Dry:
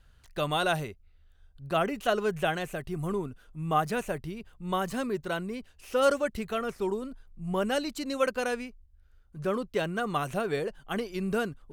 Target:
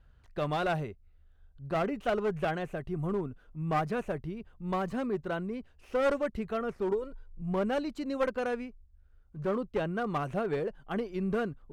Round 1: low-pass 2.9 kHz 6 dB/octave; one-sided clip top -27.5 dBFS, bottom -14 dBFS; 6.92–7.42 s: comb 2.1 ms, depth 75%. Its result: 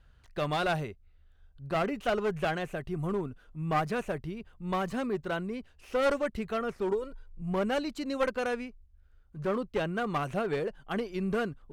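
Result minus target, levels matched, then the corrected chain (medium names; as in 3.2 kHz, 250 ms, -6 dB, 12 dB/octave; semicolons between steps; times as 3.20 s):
4 kHz band +4.5 dB
low-pass 1.2 kHz 6 dB/octave; one-sided clip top -27.5 dBFS, bottom -14 dBFS; 6.92–7.42 s: comb 2.1 ms, depth 75%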